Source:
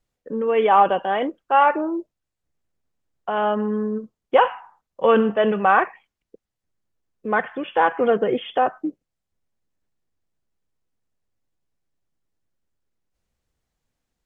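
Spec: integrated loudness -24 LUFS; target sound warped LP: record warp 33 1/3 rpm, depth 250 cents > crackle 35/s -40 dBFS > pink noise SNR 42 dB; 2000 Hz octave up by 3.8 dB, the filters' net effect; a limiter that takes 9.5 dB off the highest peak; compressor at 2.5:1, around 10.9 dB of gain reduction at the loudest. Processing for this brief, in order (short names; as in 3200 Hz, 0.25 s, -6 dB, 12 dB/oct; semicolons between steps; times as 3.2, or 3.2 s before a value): bell 2000 Hz +5.5 dB; compressor 2.5:1, threshold -26 dBFS; limiter -20.5 dBFS; record warp 33 1/3 rpm, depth 250 cents; crackle 35/s -40 dBFS; pink noise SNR 42 dB; gain +7 dB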